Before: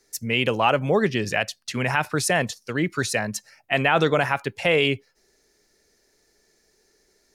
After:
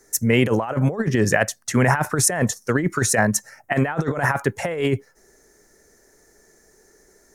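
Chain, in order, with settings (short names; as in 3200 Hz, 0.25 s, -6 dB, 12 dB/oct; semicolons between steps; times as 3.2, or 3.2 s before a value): band shelf 3400 Hz -13 dB 1.3 oct; negative-ratio compressor -25 dBFS, ratio -0.5; gain +6.5 dB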